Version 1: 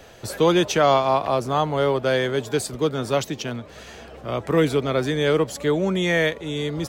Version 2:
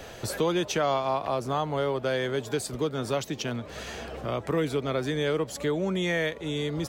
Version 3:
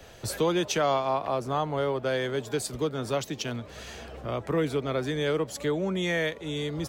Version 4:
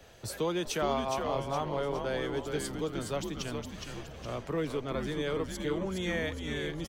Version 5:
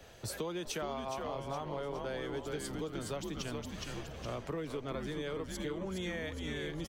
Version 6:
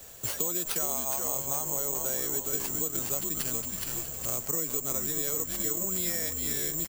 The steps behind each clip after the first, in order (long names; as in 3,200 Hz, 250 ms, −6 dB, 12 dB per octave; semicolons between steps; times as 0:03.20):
downward compressor 2 to 1, threshold −36 dBFS, peak gain reduction 12.5 dB; level +3.5 dB
multiband upward and downward expander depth 40%
echo with shifted repeats 415 ms, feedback 46%, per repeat −110 Hz, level −5 dB; level −6 dB
downward compressor, threshold −35 dBFS, peak gain reduction 9.5 dB
bad sample-rate conversion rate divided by 6×, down none, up zero stuff